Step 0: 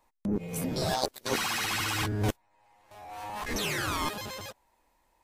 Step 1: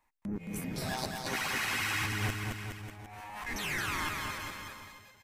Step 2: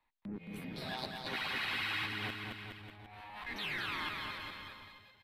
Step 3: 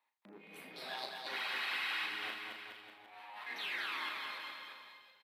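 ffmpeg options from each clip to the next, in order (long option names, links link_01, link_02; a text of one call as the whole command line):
ffmpeg -i in.wav -filter_complex "[0:a]equalizer=frequency=500:width_type=o:width=1:gain=-7,equalizer=frequency=2000:width_type=o:width=1:gain=7,equalizer=frequency=4000:width_type=o:width=1:gain=-3,asplit=2[link_01][link_02];[link_02]aecho=0:1:220|418|596.2|756.6|900.9:0.631|0.398|0.251|0.158|0.1[link_03];[link_01][link_03]amix=inputs=2:normalize=0,volume=-6dB" out.wav
ffmpeg -i in.wav -filter_complex "[0:a]highshelf=frequency=5000:width_type=q:width=3:gain=-9,acrossover=split=140|1800[link_01][link_02][link_03];[link_01]acompressor=threshold=-50dB:ratio=6[link_04];[link_04][link_02][link_03]amix=inputs=3:normalize=0,volume=-5.5dB" out.wav
ffmpeg -i in.wav -filter_complex "[0:a]highpass=470,asplit=2[link_01][link_02];[link_02]aecho=0:1:36|80:0.473|0.282[link_03];[link_01][link_03]amix=inputs=2:normalize=0,volume=-2dB" out.wav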